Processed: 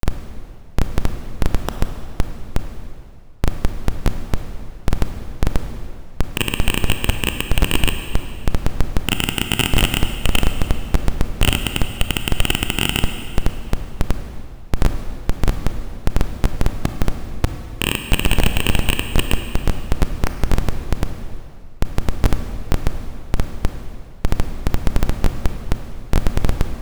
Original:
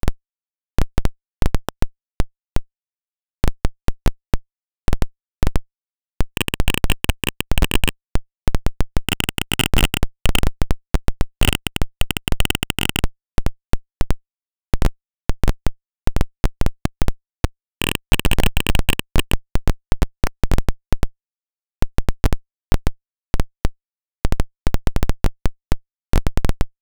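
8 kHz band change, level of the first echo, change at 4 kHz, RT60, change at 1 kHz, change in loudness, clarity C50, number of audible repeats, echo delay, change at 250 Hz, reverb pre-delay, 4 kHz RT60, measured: +1.0 dB, none, +1.0 dB, 2.3 s, +1.0 dB, +1.0 dB, 7.5 dB, none, none, +1.0 dB, 25 ms, 2.1 s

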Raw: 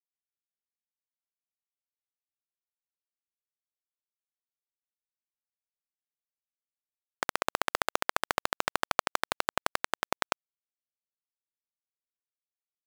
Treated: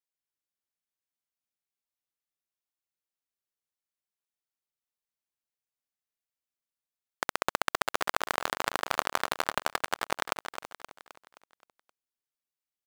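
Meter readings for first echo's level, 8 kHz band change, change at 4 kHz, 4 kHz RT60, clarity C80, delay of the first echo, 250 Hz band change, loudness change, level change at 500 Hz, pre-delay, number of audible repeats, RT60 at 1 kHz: -9.0 dB, +0.5 dB, +0.5 dB, none, none, 0.262 s, +0.5 dB, +0.5 dB, +0.5 dB, none, 5, none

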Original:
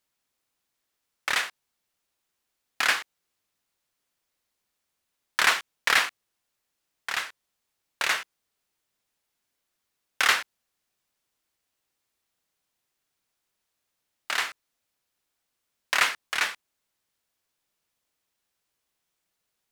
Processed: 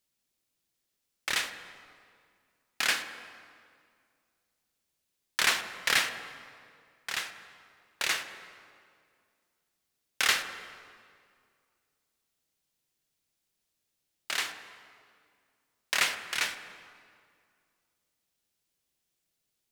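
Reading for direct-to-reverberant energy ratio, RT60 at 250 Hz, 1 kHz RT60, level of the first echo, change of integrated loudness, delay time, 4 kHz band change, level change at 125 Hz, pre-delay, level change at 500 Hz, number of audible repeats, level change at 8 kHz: 8.5 dB, 2.4 s, 2.1 s, none, -4.0 dB, none, -1.5 dB, n/a, 3 ms, -3.0 dB, none, -0.5 dB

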